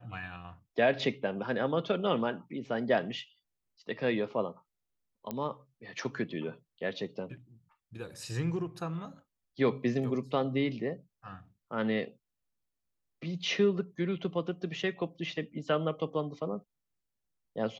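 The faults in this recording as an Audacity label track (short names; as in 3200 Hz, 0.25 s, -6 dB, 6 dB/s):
5.310000	5.310000	pop -20 dBFS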